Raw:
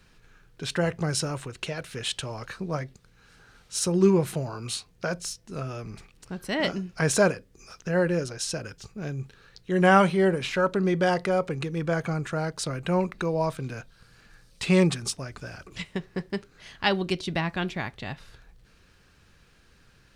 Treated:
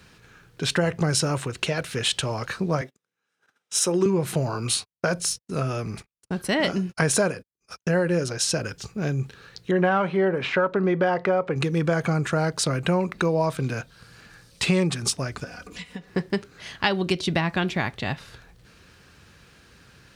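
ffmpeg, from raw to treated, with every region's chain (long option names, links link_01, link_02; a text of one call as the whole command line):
ffmpeg -i in.wav -filter_complex "[0:a]asettb=1/sr,asplit=3[link_01][link_02][link_03];[link_01]atrim=end=2.814[link_04];[link_02]atrim=start=2.81:end=4.06,asetpts=PTS-STARTPTS,afade=type=in:duration=0.004:curve=qsin,afade=type=out:start_time=1.246:duration=0.004:curve=qsin,highpass=290,agate=range=-28dB:threshold=-54dB:ratio=16:release=100:detection=peak,bandreject=frequency=4400:width=5.9[link_05];[link_03]atrim=start=4.056[link_06];[link_04][link_05]acrossfade=duration=0.004:curve1=hsin:curve2=qsin[link_07];[link_07][link_06]acrossfade=duration=0.004:curve1=qsin:curve2=hsin,asettb=1/sr,asplit=3[link_08][link_09][link_10];[link_08]atrim=end=4.694[link_11];[link_09]atrim=start=4.69:end=8.26,asetpts=PTS-STARTPTS,afade=type=in:duration=0.004:curve=qsin,afade=type=out:start_time=3.566:duration=0.004:curve=qsin,agate=range=-49dB:threshold=-47dB:ratio=16:release=100:detection=peak,equalizer=frequency=9700:width=5.1:gain=6[link_12];[link_10]atrim=start=8.256[link_13];[link_11][link_12]acrossfade=duration=0.004:curve1=hsin:curve2=qsin[link_14];[link_14][link_13]acrossfade=duration=0.004:curve1=qsin:curve2=hsin,asettb=1/sr,asplit=3[link_15][link_16][link_17];[link_15]atrim=end=9.714[link_18];[link_16]atrim=start=9.71:end=11.56,asetpts=PTS-STARTPTS,afade=type=in:duration=0.004:curve=qsin,afade=type=out:start_time=1.846:duration=0.004:curve=qsin,aemphasis=mode=reproduction:type=75kf,asplit=2[link_19][link_20];[link_20]highpass=frequency=720:poles=1,volume=9dB,asoftclip=type=tanh:threshold=-7dB[link_21];[link_19][link_21]amix=inputs=2:normalize=0,lowpass=frequency=1900:poles=1,volume=-6dB[link_22];[link_17]atrim=start=11.556[link_23];[link_18][link_22]acrossfade=duration=0.004:curve1=hsin:curve2=qsin[link_24];[link_24][link_23]acrossfade=duration=0.004:curve1=qsin:curve2=hsin,asettb=1/sr,asplit=3[link_25][link_26][link_27];[link_25]atrim=end=15.444[link_28];[link_26]atrim=start=15.44:end=16.1,asetpts=PTS-STARTPTS,afade=type=in:duration=0.004:curve=qsin,afade=type=out:start_time=0.656:duration=0.004:curve=qsin,acompressor=threshold=-46dB:ratio=3:attack=3.2:release=140:knee=1:detection=peak,aecho=1:1:4.1:0.83,atrim=end_sample=29106[link_29];[link_27]atrim=start=16.096[link_30];[link_28][link_29]acrossfade=duration=0.004:curve1=hsin:curve2=qsin[link_31];[link_31][link_30]acrossfade=duration=0.004:curve1=qsin:curve2=hsin,highpass=64,acompressor=threshold=-26dB:ratio=6,volume=7.5dB" out.wav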